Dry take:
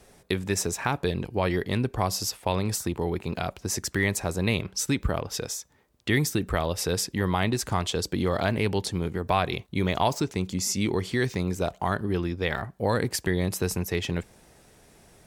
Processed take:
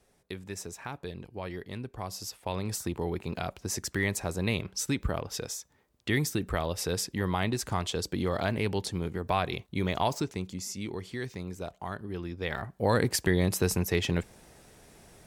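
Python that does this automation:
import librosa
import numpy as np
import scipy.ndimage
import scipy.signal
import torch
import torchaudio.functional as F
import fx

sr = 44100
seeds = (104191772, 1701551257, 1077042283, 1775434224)

y = fx.gain(x, sr, db=fx.line((1.93, -12.5), (2.88, -4.0), (10.21, -4.0), (10.7, -10.5), (12.09, -10.5), (12.97, 0.5)))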